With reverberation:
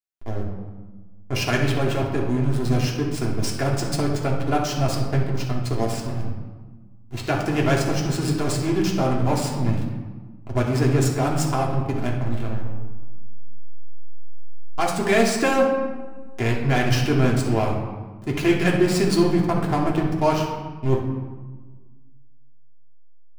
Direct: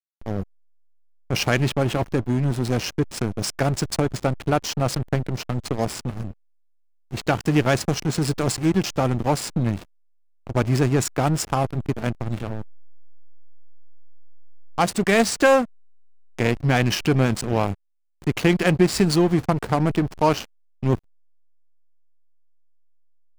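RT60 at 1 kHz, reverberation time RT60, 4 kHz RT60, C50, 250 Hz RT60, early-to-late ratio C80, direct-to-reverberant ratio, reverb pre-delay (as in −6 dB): 1.3 s, 1.3 s, 0.80 s, 4.0 dB, 1.8 s, 6.5 dB, −3.5 dB, 3 ms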